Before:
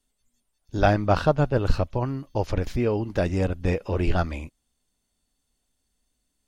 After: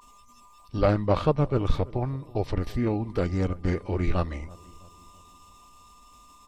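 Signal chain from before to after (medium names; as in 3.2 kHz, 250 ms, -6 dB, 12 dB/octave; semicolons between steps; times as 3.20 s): whistle 1.2 kHz -48 dBFS; formant shift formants -3 st; filtered feedback delay 329 ms, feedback 51%, low-pass 1.1 kHz, level -21 dB; trim -2 dB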